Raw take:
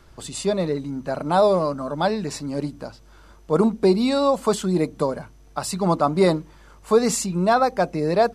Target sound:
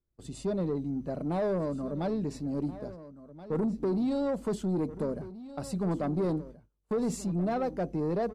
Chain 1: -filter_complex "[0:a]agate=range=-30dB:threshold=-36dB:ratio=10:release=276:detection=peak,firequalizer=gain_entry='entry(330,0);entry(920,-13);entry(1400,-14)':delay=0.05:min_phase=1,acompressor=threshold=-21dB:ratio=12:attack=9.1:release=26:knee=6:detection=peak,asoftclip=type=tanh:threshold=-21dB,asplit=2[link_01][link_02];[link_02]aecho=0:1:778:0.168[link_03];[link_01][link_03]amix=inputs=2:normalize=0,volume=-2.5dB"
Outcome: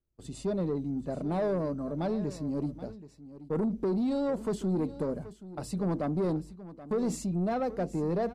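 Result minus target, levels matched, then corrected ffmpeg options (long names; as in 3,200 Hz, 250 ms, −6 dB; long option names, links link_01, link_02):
echo 600 ms early
-filter_complex "[0:a]agate=range=-30dB:threshold=-36dB:ratio=10:release=276:detection=peak,firequalizer=gain_entry='entry(330,0);entry(920,-13);entry(1400,-14)':delay=0.05:min_phase=1,acompressor=threshold=-21dB:ratio=12:attack=9.1:release=26:knee=6:detection=peak,asoftclip=type=tanh:threshold=-21dB,asplit=2[link_01][link_02];[link_02]aecho=0:1:1378:0.168[link_03];[link_01][link_03]amix=inputs=2:normalize=0,volume=-2.5dB"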